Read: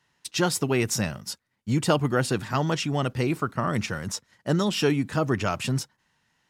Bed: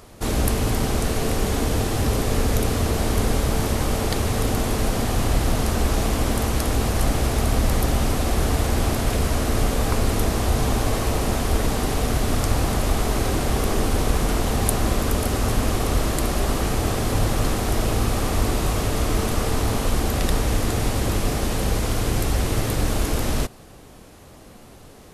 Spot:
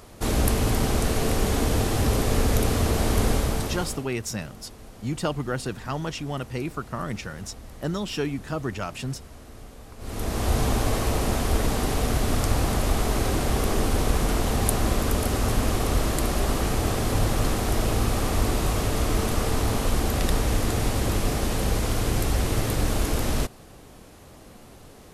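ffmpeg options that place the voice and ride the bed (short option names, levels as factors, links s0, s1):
-filter_complex "[0:a]adelay=3350,volume=0.562[s0];[1:a]volume=10,afade=t=out:st=3.29:d=0.78:silence=0.0794328,afade=t=in:st=9.98:d=0.54:silence=0.0891251[s1];[s0][s1]amix=inputs=2:normalize=0"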